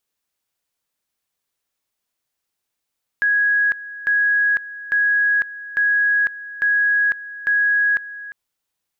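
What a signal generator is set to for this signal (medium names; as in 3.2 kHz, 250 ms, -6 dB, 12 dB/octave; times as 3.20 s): two-level tone 1.66 kHz -14 dBFS, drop 16.5 dB, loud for 0.50 s, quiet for 0.35 s, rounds 6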